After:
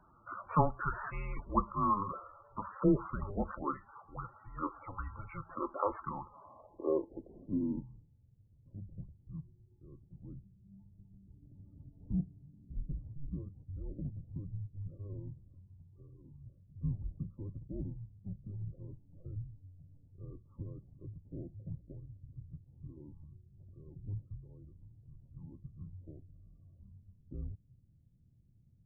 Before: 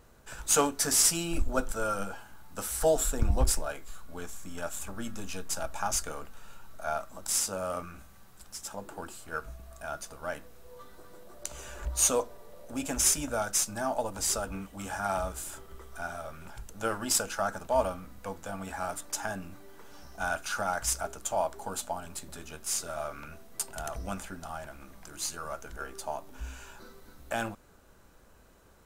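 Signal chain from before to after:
single-sideband voice off tune −300 Hz 190–3,500 Hz
low-pass filter sweep 1,400 Hz → 130 Hz, 0:06.08–0:08.20
0:15.45–0:16.31: downward compressor 3 to 1, threshold −51 dBFS, peak gain reduction 5.5 dB
spectral peaks only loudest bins 32
level −2.5 dB

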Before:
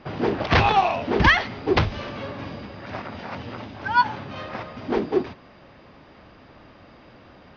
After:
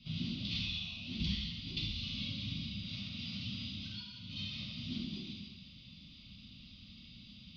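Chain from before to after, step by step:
three-way crossover with the lows and the highs turned down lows −16 dB, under 520 Hz, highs −19 dB, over 3,800 Hz
downward compressor 10 to 1, threshold −33 dBFS, peak gain reduction 20 dB
elliptic band-stop filter 200–3,600 Hz, stop band 40 dB
reverb whose tail is shaped and stops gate 400 ms falling, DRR −6 dB
level +7.5 dB

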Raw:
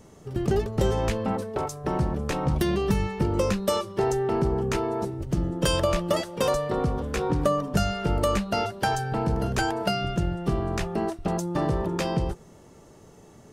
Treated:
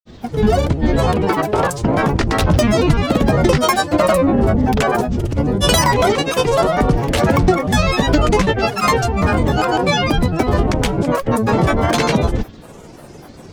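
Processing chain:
parametric band 2,900 Hz +3 dB
in parallel at +2.5 dB: brickwall limiter −21.5 dBFS, peak gain reduction 10.5 dB
on the sum: granular cloud, pitch spread up and down by 12 semitones
level +6.5 dB

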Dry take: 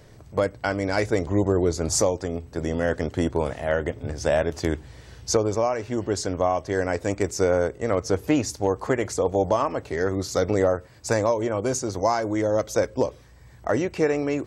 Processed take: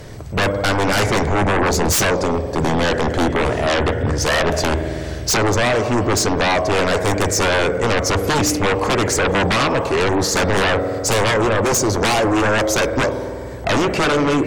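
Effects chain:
0:02.84–0:04.19: high-shelf EQ 10,000 Hz −6.5 dB
spring reverb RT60 2.3 s, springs 50 ms, chirp 60 ms, DRR 11.5 dB
sine wavefolder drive 15 dB, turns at −8.5 dBFS
level −4.5 dB

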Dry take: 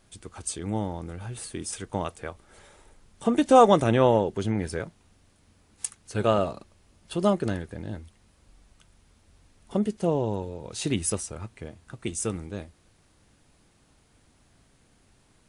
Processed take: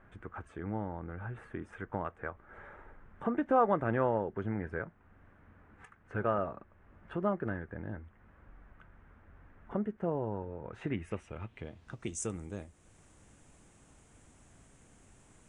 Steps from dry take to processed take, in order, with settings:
parametric band 4,500 Hz −13.5 dB 0.8 octaves
downward compressor 1.5 to 1, threshold −51 dBFS, peak gain reduction 14 dB
low-pass filter sweep 1,600 Hz → 7,600 Hz, 0:10.77–0:12.36
level +1.5 dB

